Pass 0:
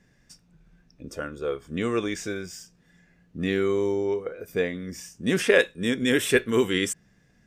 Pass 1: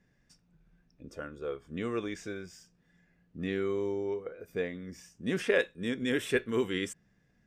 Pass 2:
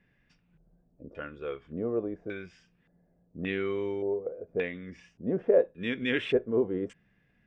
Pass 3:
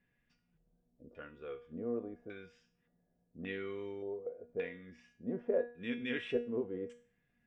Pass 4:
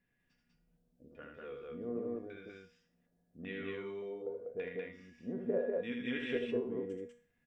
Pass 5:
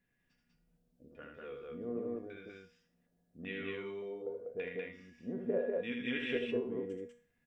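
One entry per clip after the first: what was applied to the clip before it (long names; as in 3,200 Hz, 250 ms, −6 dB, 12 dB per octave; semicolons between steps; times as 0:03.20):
high-shelf EQ 5,400 Hz −8.5 dB; level −7.5 dB
auto-filter low-pass square 0.87 Hz 630–2,700 Hz
tuned comb filter 240 Hz, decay 0.44 s, harmonics all, mix 80%; level +2 dB
loudspeakers that aren't time-aligned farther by 27 metres −5 dB, 67 metres −1 dB; level −3 dB
dynamic equaliser 2,700 Hz, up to +5 dB, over −60 dBFS, Q 2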